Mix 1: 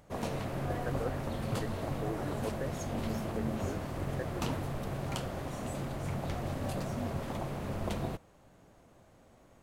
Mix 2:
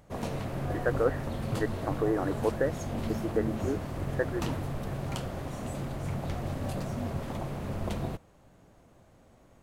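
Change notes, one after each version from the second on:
speech +11.5 dB
background: add low-shelf EQ 230 Hz +3.5 dB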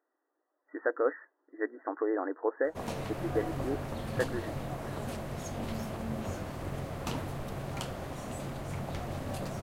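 background: entry +2.65 s
master: add low-shelf EQ 350 Hz −5 dB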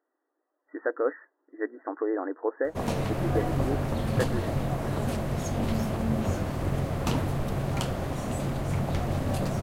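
background +5.5 dB
master: add low-shelf EQ 350 Hz +5 dB

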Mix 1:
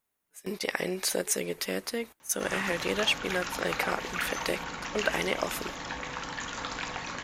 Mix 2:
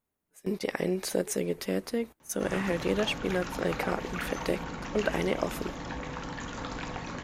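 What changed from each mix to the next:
master: add tilt shelving filter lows +6.5 dB, about 690 Hz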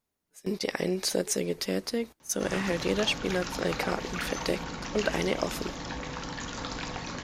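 master: add parametric band 5,000 Hz +8.5 dB 1.2 octaves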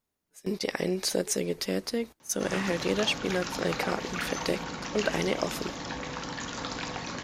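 background: add high-pass filter 110 Hz 6 dB per octave
reverb: on, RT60 1.8 s

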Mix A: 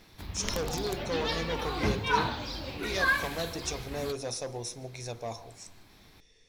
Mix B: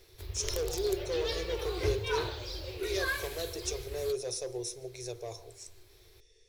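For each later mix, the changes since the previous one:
master: add drawn EQ curve 100 Hz 0 dB, 250 Hz −29 dB, 370 Hz +6 dB, 830 Hz −11 dB, 10,000 Hz +2 dB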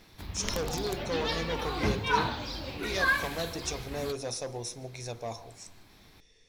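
master: remove drawn EQ curve 100 Hz 0 dB, 250 Hz −29 dB, 370 Hz +6 dB, 830 Hz −11 dB, 10,000 Hz +2 dB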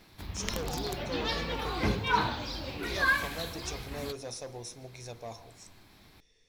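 speech −5.0 dB

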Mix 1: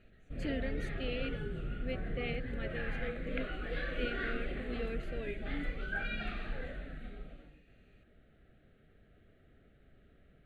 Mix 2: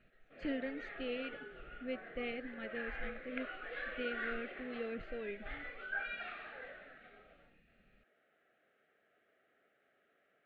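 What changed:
speech: add high-frequency loss of the air 210 metres
background: add band-pass filter 670–2,500 Hz

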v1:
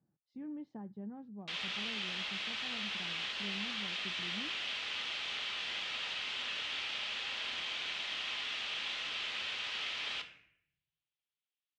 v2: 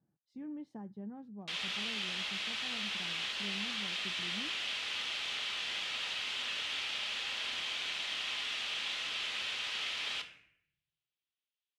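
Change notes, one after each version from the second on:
background: add high-frequency loss of the air 58 metres
master: remove high-frequency loss of the air 130 metres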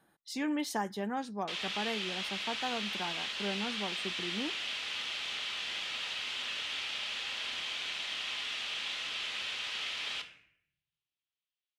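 speech: remove resonant band-pass 130 Hz, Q 1.6

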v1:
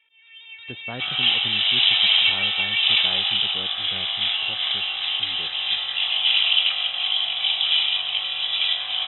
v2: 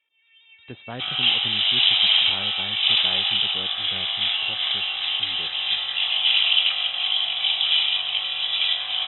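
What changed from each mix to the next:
first sound −10.5 dB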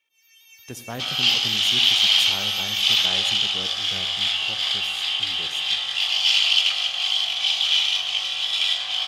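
speech: send on
master: remove linear-phase brick-wall low-pass 4,000 Hz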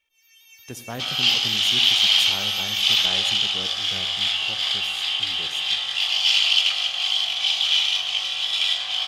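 first sound: remove linear-phase brick-wall high-pass 260 Hz

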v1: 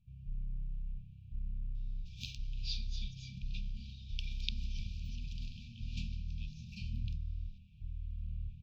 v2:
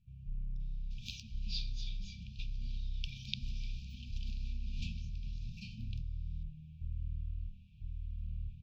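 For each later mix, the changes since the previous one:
speech: entry −1.55 s
second sound: entry −1.15 s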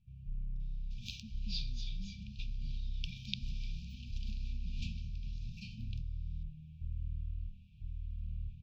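speech: add spectral tilt −3.5 dB per octave

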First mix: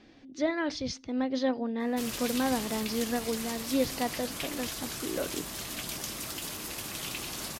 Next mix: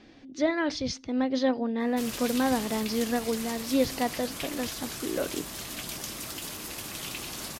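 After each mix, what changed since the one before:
speech +3.0 dB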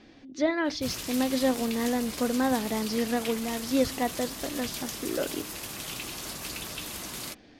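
background: entry −1.15 s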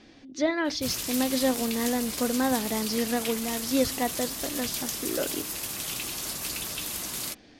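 master: add high-shelf EQ 4,900 Hz +7.5 dB

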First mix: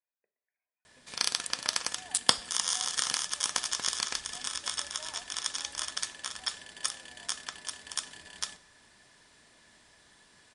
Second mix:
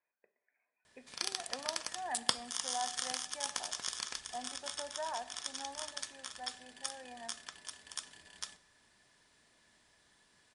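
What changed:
speech +11.5 dB
background −8.0 dB

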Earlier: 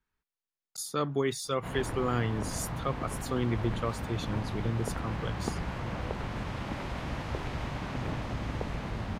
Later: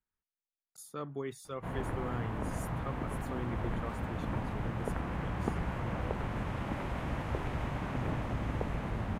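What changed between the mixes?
speech −9.5 dB
master: add parametric band 4,700 Hz −10 dB 1.2 octaves

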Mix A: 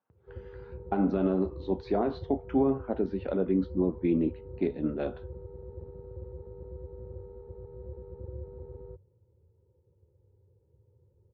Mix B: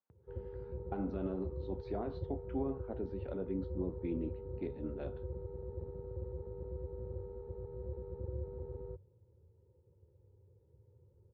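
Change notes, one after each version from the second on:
speech −12.0 dB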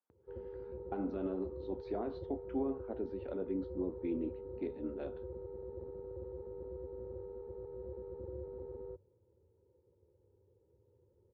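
master: add low shelf with overshoot 200 Hz −7.5 dB, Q 1.5

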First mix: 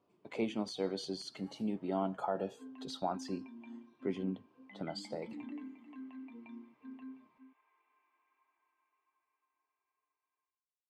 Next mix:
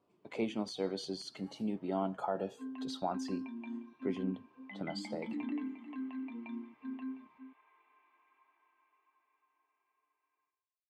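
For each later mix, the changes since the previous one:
background +7.0 dB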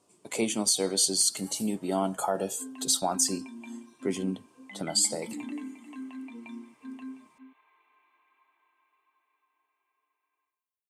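speech +5.5 dB
master: remove high-frequency loss of the air 310 metres

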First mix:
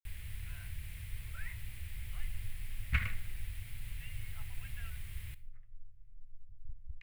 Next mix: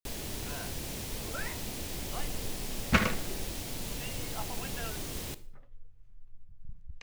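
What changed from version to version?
master: remove drawn EQ curve 100 Hz 0 dB, 190 Hz −20 dB, 330 Hz −30 dB, 540 Hz −27 dB, 860 Hz −24 dB, 2,100 Hz −4 dB, 6,100 Hz −26 dB, 9,400 Hz −13 dB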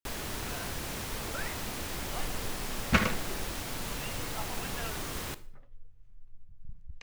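first sound: add parametric band 1,300 Hz +10 dB 1.4 octaves

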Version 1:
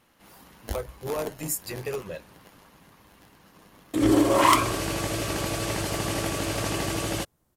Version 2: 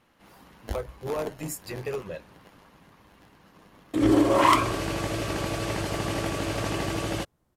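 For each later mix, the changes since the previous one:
master: add high-shelf EQ 5,900 Hz −10 dB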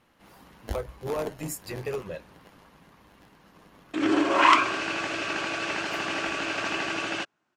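background: add loudspeaker in its box 310–7,100 Hz, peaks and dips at 500 Hz −9 dB, 1,500 Hz +9 dB, 2,600 Hz +9 dB

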